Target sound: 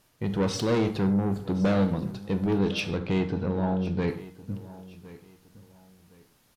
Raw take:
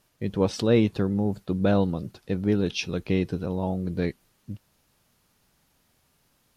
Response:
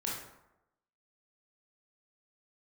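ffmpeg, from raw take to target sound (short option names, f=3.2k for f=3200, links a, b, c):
-filter_complex "[0:a]asettb=1/sr,asplit=3[a][b][c];[a]atrim=end=2.584[d];[b]atrim=start=2.58:end=4.08,asetpts=PTS-STARTPTS,afade=t=in:d=0.004:c=qsin,afade=t=out:st=1.496:d=0.004:c=qsin,lowpass=4.1k[e];[c]atrim=start=4.076[f];[d][e]acrossfade=d=0.004:c1=hsin:c2=qsin[g];[g][f]acrossfade=d=0.004:c1=qsin:c2=hsin,asoftclip=type=tanh:threshold=-23.5dB,aecho=1:1:1063|2126:0.119|0.0345,asplit=2[h][i];[1:a]atrim=start_sample=2205,afade=t=out:st=0.21:d=0.01,atrim=end_sample=9702[j];[i][j]afir=irnorm=-1:irlink=0,volume=-7dB[k];[h][k]amix=inputs=2:normalize=0"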